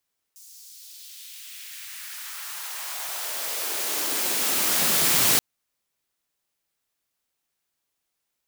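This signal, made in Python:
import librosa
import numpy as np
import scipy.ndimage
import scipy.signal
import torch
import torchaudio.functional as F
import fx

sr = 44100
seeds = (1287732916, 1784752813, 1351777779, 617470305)

y = fx.riser_noise(sr, seeds[0], length_s=5.03, colour='white', kind='highpass', start_hz=6500.0, end_hz=110.0, q=1.6, swell_db=30.0, law='exponential')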